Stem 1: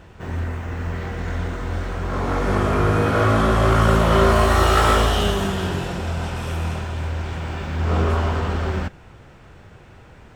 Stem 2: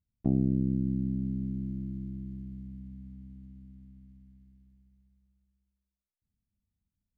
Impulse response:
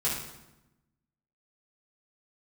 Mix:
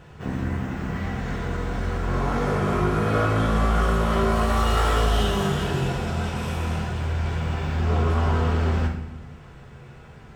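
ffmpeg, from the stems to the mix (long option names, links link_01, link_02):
-filter_complex "[0:a]acompressor=threshold=-18dB:ratio=6,volume=-6.5dB,asplit=2[link_01][link_02];[link_02]volume=-5dB[link_03];[1:a]volume=-4dB[link_04];[2:a]atrim=start_sample=2205[link_05];[link_03][link_05]afir=irnorm=-1:irlink=0[link_06];[link_01][link_04][link_06]amix=inputs=3:normalize=0"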